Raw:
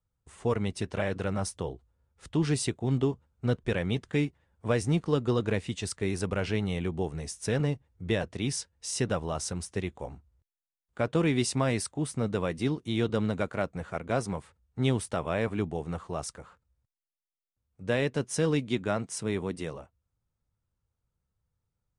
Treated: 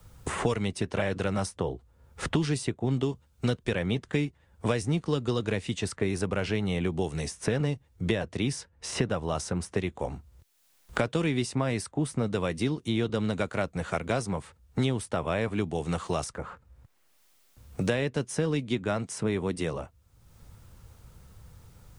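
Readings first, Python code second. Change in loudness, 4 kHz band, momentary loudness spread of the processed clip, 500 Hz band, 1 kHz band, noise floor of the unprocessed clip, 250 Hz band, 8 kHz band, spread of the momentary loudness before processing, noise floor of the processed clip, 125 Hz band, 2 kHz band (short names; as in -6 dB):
+0.5 dB, +1.5 dB, 7 LU, +0.5 dB, +1.5 dB, under -85 dBFS, +1.0 dB, -2.0 dB, 10 LU, -64 dBFS, +0.5 dB, +1.5 dB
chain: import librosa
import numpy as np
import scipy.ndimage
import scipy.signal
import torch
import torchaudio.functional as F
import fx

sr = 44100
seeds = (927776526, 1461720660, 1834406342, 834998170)

y = fx.band_squash(x, sr, depth_pct=100)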